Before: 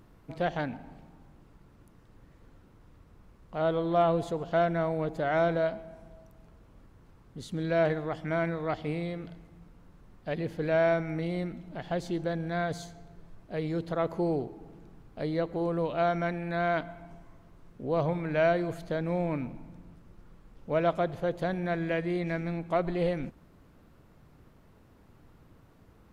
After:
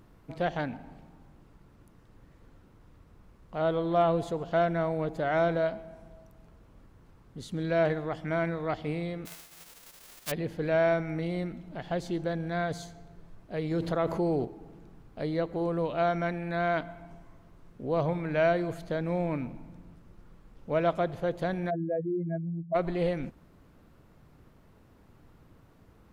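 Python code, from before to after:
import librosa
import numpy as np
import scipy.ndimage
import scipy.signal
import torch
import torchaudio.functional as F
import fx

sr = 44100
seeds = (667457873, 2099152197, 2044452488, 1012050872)

y = fx.envelope_flatten(x, sr, power=0.1, at=(9.25, 10.3), fade=0.02)
y = fx.env_flatten(y, sr, amount_pct=50, at=(13.71, 14.45))
y = fx.spec_expand(y, sr, power=3.3, at=(21.69, 22.74), fade=0.02)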